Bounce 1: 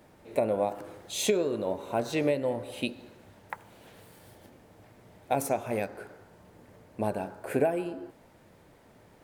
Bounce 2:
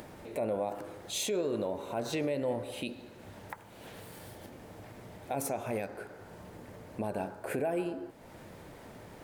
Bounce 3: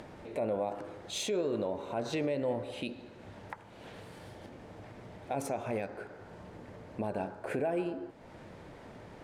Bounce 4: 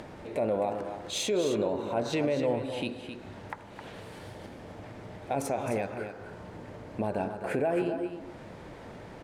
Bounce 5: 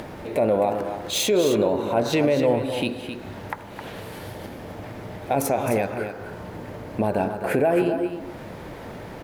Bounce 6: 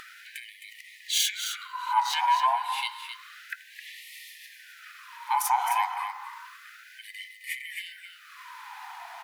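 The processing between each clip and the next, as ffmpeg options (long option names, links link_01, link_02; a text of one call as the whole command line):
ffmpeg -i in.wav -af "acompressor=mode=upward:threshold=-40dB:ratio=2.5,alimiter=limit=-23.5dB:level=0:latency=1:release=58" out.wav
ffmpeg -i in.wav -af "adynamicsmooth=sensitivity=4:basefreq=6500" out.wav
ffmpeg -i in.wav -af "aecho=1:1:263:0.376,volume=4dB" out.wav
ffmpeg -i in.wav -af "aexciter=amount=4.4:drive=3.6:freq=11000,volume=8dB" out.wav
ffmpeg -i in.wav -af "afftfilt=real='real(if(between(b,1,1008),(2*floor((b-1)/24)+1)*24-b,b),0)':imag='imag(if(between(b,1,1008),(2*floor((b-1)/24)+1)*24-b,b),0)*if(between(b,1,1008),-1,1)':win_size=2048:overlap=0.75,afftfilt=real='re*gte(b*sr/1024,680*pow(1800/680,0.5+0.5*sin(2*PI*0.3*pts/sr)))':imag='im*gte(b*sr/1024,680*pow(1800/680,0.5+0.5*sin(2*PI*0.3*pts/sr)))':win_size=1024:overlap=0.75" out.wav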